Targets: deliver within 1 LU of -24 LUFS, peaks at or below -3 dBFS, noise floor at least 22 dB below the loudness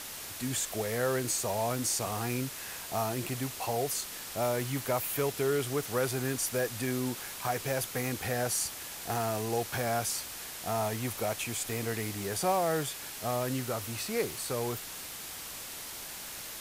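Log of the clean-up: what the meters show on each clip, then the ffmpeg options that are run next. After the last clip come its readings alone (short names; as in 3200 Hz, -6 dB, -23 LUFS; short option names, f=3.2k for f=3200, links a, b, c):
noise floor -42 dBFS; noise floor target -55 dBFS; loudness -32.5 LUFS; peak -17.0 dBFS; loudness target -24.0 LUFS
-> -af "afftdn=nr=13:nf=-42"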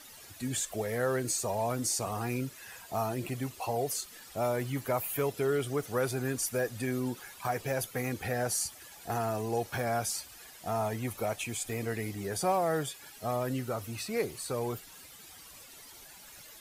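noise floor -52 dBFS; noise floor target -55 dBFS
-> -af "afftdn=nr=6:nf=-52"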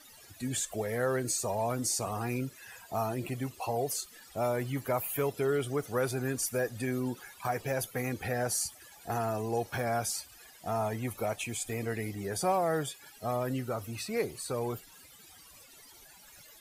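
noise floor -55 dBFS; loudness -33.0 LUFS; peak -18.0 dBFS; loudness target -24.0 LUFS
-> -af "volume=9dB"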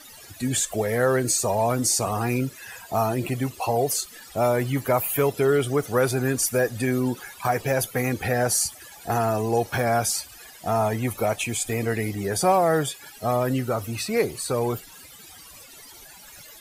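loudness -24.0 LUFS; peak -9.0 dBFS; noise floor -46 dBFS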